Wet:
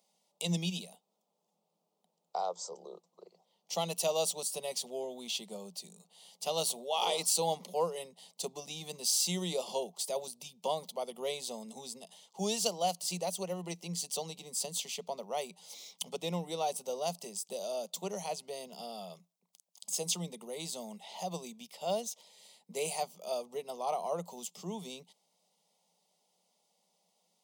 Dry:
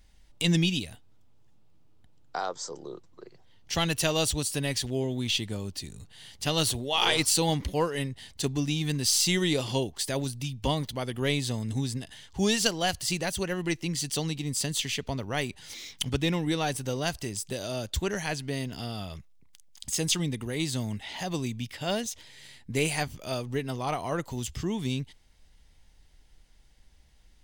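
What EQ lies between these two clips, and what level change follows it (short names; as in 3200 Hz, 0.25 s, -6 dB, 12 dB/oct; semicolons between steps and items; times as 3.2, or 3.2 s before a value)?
rippled Chebyshev high-pass 170 Hz, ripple 3 dB; bell 2500 Hz -4 dB 1.9 oct; fixed phaser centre 680 Hz, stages 4; 0.0 dB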